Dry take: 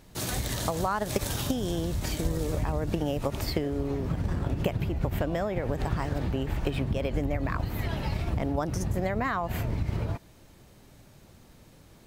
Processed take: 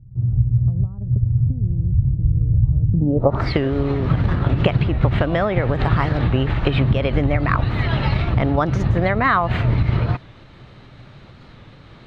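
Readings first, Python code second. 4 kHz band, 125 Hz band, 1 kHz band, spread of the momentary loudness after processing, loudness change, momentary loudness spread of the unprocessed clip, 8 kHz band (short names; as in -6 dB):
+5.5 dB, +13.5 dB, +10.0 dB, 3 LU, +11.0 dB, 2 LU, under -15 dB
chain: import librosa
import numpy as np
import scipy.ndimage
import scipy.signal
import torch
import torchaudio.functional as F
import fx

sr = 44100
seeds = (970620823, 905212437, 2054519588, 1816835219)

p1 = fx.filter_sweep_lowpass(x, sr, from_hz=110.0, to_hz=2600.0, start_s=2.9, end_s=3.53, q=2.1)
p2 = fx.graphic_eq_31(p1, sr, hz=(125, 1250, 2500, 4000), db=(8, 6, -5, 8))
p3 = fx.volume_shaper(p2, sr, bpm=138, per_beat=1, depth_db=-4, release_ms=104.0, shape='slow start')
p4 = p2 + (p3 * 10.0 ** (-2.0 / 20.0))
p5 = fx.record_warp(p4, sr, rpm=45.0, depth_cents=100.0)
y = p5 * 10.0 ** (4.0 / 20.0)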